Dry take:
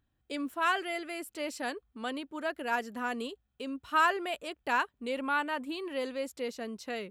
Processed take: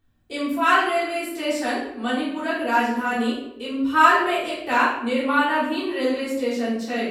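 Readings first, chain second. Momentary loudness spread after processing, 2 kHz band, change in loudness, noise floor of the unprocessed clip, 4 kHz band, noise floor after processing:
10 LU, +10.5 dB, +11.5 dB, −78 dBFS, +10.0 dB, −40 dBFS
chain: rectangular room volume 230 cubic metres, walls mixed, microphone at 3.5 metres

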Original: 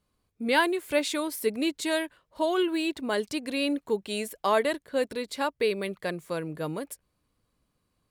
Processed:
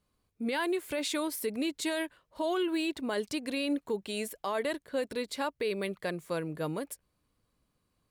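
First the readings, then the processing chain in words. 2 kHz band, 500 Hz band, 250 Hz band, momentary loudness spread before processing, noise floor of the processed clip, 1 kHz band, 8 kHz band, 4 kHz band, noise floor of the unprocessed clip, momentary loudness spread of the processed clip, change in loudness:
−6.0 dB, −5.0 dB, −3.0 dB, 9 LU, −78 dBFS, −7.0 dB, −2.5 dB, −4.5 dB, −77 dBFS, 5 LU, −5.0 dB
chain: brickwall limiter −21.5 dBFS, peak gain reduction 10 dB
level −1.5 dB

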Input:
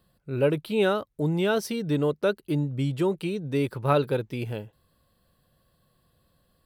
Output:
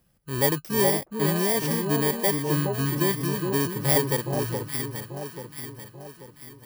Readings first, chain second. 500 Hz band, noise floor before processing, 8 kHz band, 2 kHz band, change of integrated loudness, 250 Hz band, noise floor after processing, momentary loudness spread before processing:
−0.5 dB, −70 dBFS, +16.5 dB, +3.0 dB, +2.5 dB, +0.5 dB, −57 dBFS, 8 LU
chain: samples in bit-reversed order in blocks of 32 samples
delay that swaps between a low-pass and a high-pass 419 ms, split 1,100 Hz, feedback 66%, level −4 dB

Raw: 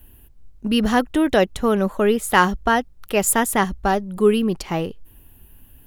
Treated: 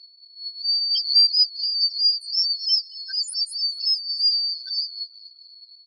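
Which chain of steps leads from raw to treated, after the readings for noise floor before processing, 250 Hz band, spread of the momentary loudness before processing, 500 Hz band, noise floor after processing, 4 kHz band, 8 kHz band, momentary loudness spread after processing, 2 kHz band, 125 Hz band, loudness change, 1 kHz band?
−49 dBFS, below −40 dB, 7 LU, below −40 dB, −51 dBFS, +14.0 dB, −14.0 dB, 12 LU, below −25 dB, below −40 dB, 0.0 dB, below −40 dB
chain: band-splitting scrambler in four parts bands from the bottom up 4321
auto-filter high-pass saw down 4.4 Hz 530–4,300 Hz
spectral peaks only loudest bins 2
dynamic equaliser 8,700 Hz, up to −3 dB, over −34 dBFS, Q 1
comb filter 5.1 ms, depth 35%
on a send: echo with shifted repeats 225 ms, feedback 63%, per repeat −68 Hz, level −22 dB
on the sum: background raised ahead of every attack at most 140 dB per second

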